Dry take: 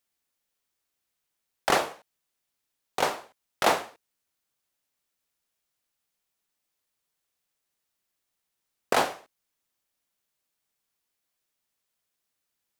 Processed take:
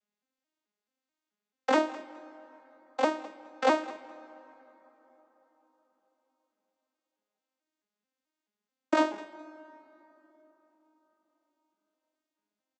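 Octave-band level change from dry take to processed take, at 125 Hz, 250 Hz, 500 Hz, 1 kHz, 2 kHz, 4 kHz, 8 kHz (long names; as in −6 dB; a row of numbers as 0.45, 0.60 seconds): below −15 dB, +7.5 dB, +0.5 dB, −3.0 dB, −4.0 dB, −8.0 dB, −12.5 dB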